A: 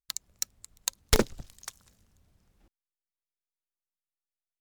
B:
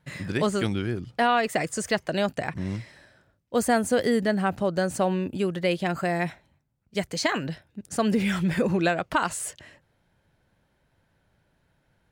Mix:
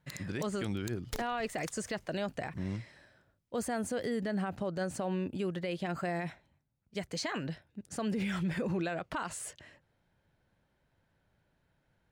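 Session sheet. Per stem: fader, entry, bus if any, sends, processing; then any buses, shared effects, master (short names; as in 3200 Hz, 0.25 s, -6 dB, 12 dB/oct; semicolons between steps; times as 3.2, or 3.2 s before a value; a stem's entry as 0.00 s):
0.0 dB, 0.00 s, no send, compressor 1.5:1, threshold -47 dBFS, peak gain reduction 11 dB
-6.0 dB, 0.00 s, no send, high shelf 9000 Hz -7 dB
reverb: off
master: limiter -26 dBFS, peak gain reduction 10 dB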